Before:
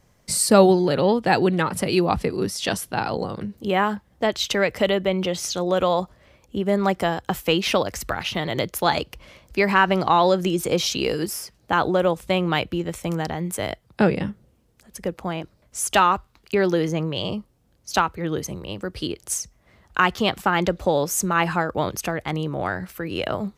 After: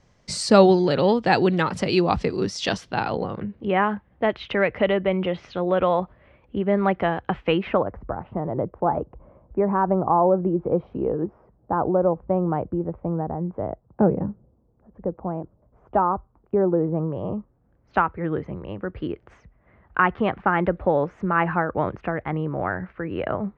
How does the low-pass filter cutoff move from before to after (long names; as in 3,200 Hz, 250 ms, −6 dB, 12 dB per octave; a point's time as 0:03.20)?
low-pass filter 24 dB per octave
0:02.64 6,400 Hz
0:03.43 2,600 Hz
0:07.51 2,600 Hz
0:08.01 1,000 Hz
0:16.83 1,000 Hz
0:17.98 2,000 Hz